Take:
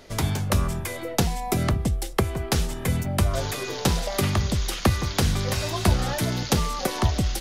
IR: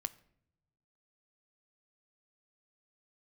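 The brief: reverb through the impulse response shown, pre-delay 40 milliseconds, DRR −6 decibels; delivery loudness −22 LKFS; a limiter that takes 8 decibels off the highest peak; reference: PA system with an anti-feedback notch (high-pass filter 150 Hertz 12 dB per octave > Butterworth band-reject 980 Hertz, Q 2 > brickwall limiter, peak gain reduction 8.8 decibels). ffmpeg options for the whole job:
-filter_complex "[0:a]alimiter=limit=-15dB:level=0:latency=1,asplit=2[link_01][link_02];[1:a]atrim=start_sample=2205,adelay=40[link_03];[link_02][link_03]afir=irnorm=-1:irlink=0,volume=7dB[link_04];[link_01][link_04]amix=inputs=2:normalize=0,highpass=150,asuperstop=centerf=980:order=8:qfactor=2,volume=4dB,alimiter=limit=-12.5dB:level=0:latency=1"

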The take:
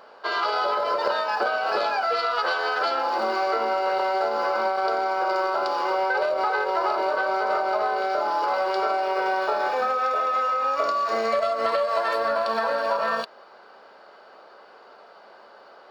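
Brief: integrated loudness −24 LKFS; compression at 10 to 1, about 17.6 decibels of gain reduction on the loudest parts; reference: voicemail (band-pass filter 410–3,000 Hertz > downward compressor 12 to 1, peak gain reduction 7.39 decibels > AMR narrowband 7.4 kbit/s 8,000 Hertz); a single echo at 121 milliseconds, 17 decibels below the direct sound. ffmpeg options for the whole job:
ffmpeg -i in.wav -af "acompressor=threshold=-38dB:ratio=10,highpass=410,lowpass=3000,aecho=1:1:121:0.141,acompressor=threshold=-42dB:ratio=12,volume=23.5dB" -ar 8000 -c:a libopencore_amrnb -b:a 7400 out.amr

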